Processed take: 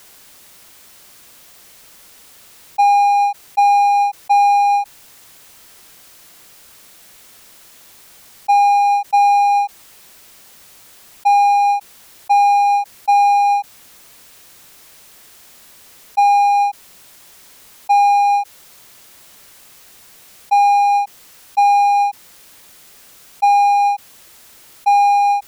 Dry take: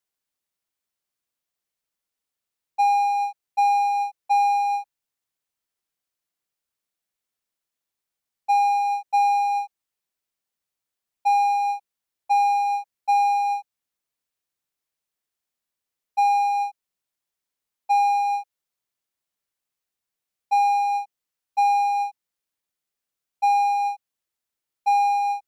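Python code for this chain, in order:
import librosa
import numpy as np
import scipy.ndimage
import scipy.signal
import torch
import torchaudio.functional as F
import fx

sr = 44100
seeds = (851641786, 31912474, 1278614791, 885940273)

y = fx.env_flatten(x, sr, amount_pct=50)
y = F.gain(torch.from_numpy(y), 6.5).numpy()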